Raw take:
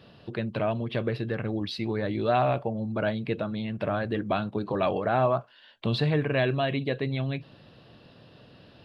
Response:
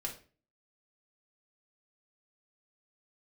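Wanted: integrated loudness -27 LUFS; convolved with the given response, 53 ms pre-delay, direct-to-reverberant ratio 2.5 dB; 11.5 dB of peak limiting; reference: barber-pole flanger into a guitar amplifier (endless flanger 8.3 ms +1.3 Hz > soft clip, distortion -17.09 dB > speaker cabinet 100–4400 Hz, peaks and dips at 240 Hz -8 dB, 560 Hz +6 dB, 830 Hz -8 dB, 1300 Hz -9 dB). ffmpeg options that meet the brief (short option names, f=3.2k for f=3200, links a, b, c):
-filter_complex "[0:a]alimiter=limit=-23dB:level=0:latency=1,asplit=2[a][b];[1:a]atrim=start_sample=2205,adelay=53[c];[b][c]afir=irnorm=-1:irlink=0,volume=-3dB[d];[a][d]amix=inputs=2:normalize=0,asplit=2[e][f];[f]adelay=8.3,afreqshift=1.3[g];[e][g]amix=inputs=2:normalize=1,asoftclip=threshold=-26dB,highpass=100,equalizer=f=240:t=q:w=4:g=-8,equalizer=f=560:t=q:w=4:g=6,equalizer=f=830:t=q:w=4:g=-8,equalizer=f=1.3k:t=q:w=4:g=-9,lowpass=f=4.4k:w=0.5412,lowpass=f=4.4k:w=1.3066,volume=9.5dB"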